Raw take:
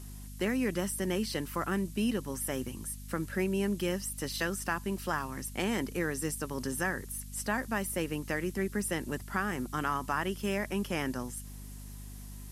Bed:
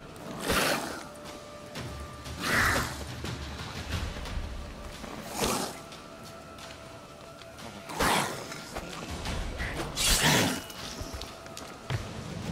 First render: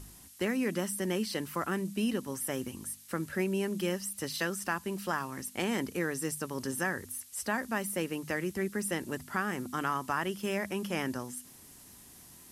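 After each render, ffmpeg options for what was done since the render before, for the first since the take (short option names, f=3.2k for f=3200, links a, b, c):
-af "bandreject=f=50:t=h:w=4,bandreject=f=100:t=h:w=4,bandreject=f=150:t=h:w=4,bandreject=f=200:t=h:w=4,bandreject=f=250:t=h:w=4"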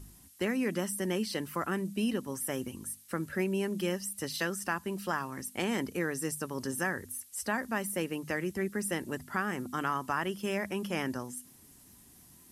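-af "afftdn=nr=6:nf=-54"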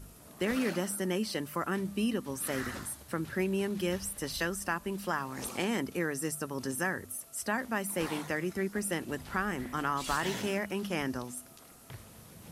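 -filter_complex "[1:a]volume=-15dB[a];[0:a][a]amix=inputs=2:normalize=0"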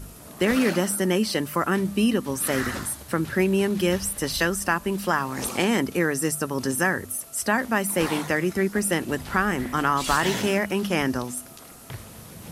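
-af "volume=9.5dB"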